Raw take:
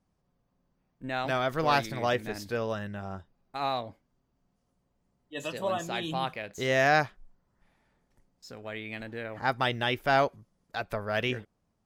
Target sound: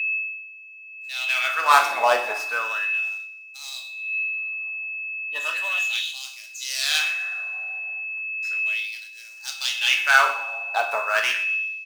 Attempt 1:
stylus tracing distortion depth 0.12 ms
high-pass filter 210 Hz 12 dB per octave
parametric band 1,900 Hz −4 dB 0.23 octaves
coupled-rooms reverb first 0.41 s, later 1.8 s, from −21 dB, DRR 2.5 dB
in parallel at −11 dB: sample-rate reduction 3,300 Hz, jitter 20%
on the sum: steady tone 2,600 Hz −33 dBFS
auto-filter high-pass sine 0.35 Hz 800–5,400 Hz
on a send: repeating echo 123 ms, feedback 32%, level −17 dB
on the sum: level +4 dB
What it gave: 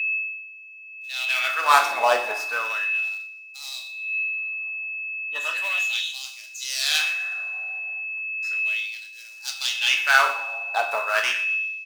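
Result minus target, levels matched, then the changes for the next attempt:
sample-rate reduction: distortion +6 dB
change: sample-rate reduction 7,400 Hz, jitter 20%

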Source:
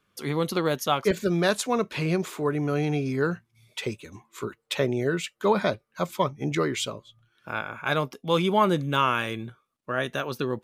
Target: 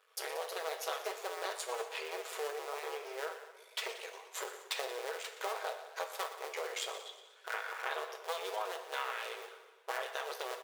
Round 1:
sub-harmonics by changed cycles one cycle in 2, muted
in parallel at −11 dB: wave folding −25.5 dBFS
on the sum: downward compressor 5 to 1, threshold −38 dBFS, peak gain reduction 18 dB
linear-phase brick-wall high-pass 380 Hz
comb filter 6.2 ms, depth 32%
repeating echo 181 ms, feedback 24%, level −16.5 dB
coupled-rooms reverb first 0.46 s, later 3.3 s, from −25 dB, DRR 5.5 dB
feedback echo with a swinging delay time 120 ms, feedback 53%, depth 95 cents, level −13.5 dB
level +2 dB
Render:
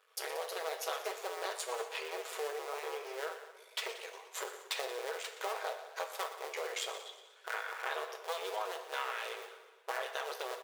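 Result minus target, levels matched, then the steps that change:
wave folding: distortion −20 dB
change: wave folding −35.5 dBFS

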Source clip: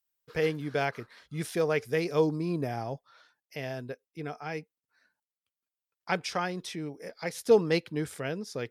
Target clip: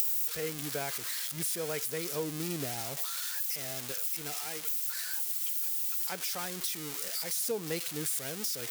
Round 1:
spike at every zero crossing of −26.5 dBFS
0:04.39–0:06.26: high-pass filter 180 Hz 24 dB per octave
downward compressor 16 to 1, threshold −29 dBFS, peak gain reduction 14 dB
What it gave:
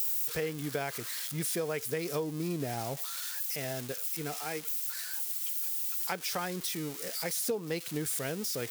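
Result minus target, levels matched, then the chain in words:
spike at every zero crossing: distortion −11 dB
spike at every zero crossing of −15.5 dBFS
0:04.39–0:06.26: high-pass filter 180 Hz 24 dB per octave
downward compressor 16 to 1, threshold −29 dBFS, peak gain reduction 14 dB

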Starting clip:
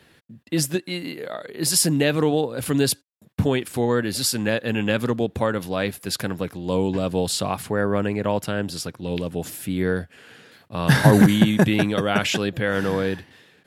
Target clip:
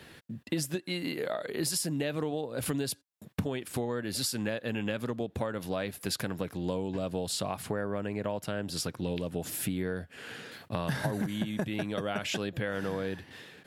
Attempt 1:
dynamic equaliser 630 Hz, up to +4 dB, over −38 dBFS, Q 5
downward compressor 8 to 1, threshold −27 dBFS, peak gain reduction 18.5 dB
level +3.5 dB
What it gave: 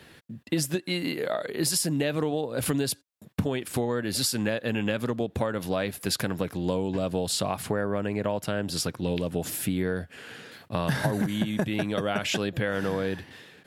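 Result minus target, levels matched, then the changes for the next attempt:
downward compressor: peak gain reduction −5 dB
change: downward compressor 8 to 1, threshold −33 dBFS, peak gain reduction 24 dB

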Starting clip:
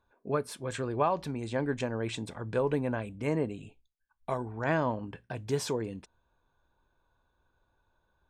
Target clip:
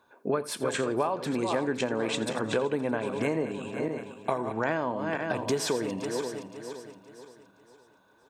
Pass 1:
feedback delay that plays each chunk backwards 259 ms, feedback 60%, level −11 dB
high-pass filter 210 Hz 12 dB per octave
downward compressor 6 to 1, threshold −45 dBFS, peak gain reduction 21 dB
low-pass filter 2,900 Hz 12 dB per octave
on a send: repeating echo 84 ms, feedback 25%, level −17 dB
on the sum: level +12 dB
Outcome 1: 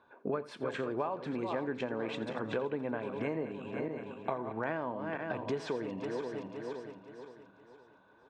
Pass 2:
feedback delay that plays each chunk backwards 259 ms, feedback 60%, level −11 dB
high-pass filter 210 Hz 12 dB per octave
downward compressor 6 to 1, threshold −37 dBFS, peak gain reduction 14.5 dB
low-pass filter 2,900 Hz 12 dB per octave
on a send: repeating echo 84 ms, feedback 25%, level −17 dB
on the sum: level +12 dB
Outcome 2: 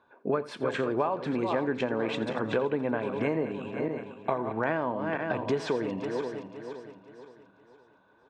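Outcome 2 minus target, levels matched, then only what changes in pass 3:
4,000 Hz band −5.5 dB
remove: low-pass filter 2,900 Hz 12 dB per octave

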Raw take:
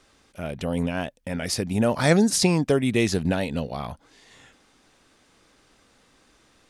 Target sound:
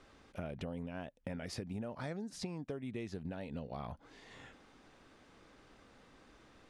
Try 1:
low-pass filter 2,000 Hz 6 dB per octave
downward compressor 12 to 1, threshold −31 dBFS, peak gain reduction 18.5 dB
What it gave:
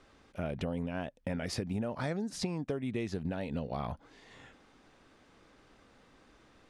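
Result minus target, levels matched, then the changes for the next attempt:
downward compressor: peak gain reduction −7 dB
change: downward compressor 12 to 1, threshold −38.5 dBFS, peak gain reduction 25.5 dB

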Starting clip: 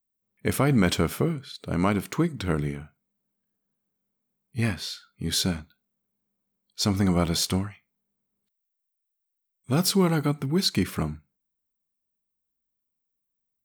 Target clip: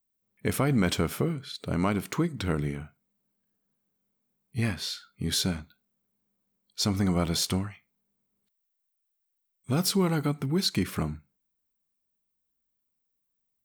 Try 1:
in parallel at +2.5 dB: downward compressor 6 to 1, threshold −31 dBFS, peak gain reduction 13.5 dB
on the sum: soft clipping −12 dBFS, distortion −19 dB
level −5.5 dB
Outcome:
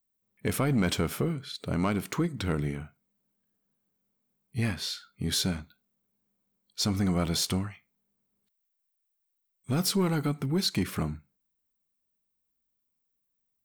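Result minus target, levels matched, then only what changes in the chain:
soft clipping: distortion +15 dB
change: soft clipping −3 dBFS, distortion −34 dB

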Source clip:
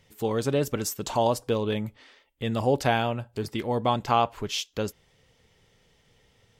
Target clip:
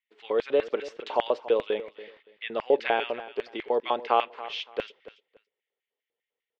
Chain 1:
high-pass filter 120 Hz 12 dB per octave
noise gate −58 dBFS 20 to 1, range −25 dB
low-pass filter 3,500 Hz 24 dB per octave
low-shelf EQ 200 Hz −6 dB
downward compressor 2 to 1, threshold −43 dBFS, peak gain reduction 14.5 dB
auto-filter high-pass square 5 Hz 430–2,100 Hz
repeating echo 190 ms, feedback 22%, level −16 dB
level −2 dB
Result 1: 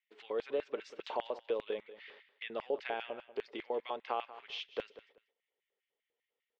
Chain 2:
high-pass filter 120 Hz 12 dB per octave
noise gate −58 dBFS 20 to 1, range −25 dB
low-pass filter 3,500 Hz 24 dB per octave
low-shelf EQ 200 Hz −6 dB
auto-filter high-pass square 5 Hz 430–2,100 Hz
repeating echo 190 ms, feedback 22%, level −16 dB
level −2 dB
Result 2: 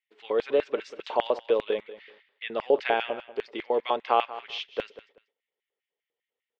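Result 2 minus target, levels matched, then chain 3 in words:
echo 94 ms early
high-pass filter 120 Hz 12 dB per octave
noise gate −58 dBFS 20 to 1, range −25 dB
low-pass filter 3,500 Hz 24 dB per octave
low-shelf EQ 200 Hz −6 dB
auto-filter high-pass square 5 Hz 430–2,100 Hz
repeating echo 284 ms, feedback 22%, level −16 dB
level −2 dB

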